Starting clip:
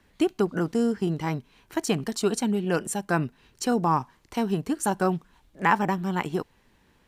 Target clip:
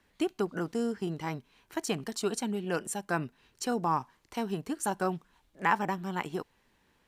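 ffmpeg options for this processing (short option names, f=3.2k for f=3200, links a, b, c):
-af "lowshelf=f=300:g=-5.5,volume=-4.5dB"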